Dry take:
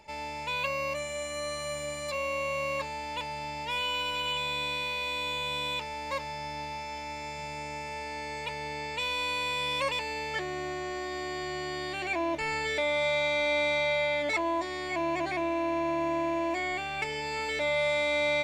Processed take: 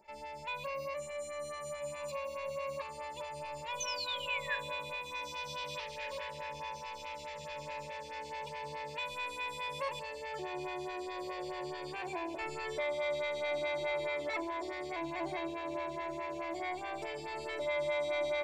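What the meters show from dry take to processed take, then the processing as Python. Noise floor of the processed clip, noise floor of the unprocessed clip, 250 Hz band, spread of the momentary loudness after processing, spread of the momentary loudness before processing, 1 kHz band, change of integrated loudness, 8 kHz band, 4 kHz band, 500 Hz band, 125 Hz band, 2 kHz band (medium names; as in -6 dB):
-46 dBFS, -38 dBFS, -9.0 dB, 8 LU, 10 LU, -7.0 dB, -8.0 dB, -5.5 dB, -10.0 dB, -6.0 dB, -9.0 dB, -9.0 dB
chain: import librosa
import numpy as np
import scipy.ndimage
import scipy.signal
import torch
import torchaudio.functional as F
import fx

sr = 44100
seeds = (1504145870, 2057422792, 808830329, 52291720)

p1 = fx.spec_paint(x, sr, seeds[0], shape='fall', start_s=3.8, length_s=0.76, low_hz=1600.0, high_hz=6400.0, level_db=-29.0)
p2 = p1 + fx.echo_diffused(p1, sr, ms=1698, feedback_pct=59, wet_db=-9, dry=0)
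p3 = fx.room_shoebox(p2, sr, seeds[1], volume_m3=2700.0, walls='furnished', distance_m=1.1)
p4 = fx.stagger_phaser(p3, sr, hz=4.7)
y = F.gain(torch.from_numpy(p4), -6.0).numpy()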